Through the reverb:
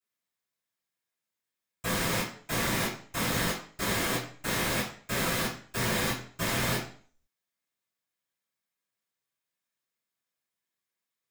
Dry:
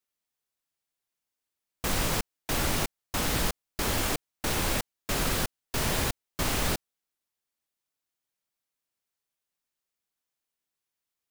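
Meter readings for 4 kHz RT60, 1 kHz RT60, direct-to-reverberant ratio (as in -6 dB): 0.45 s, 0.45 s, -14.0 dB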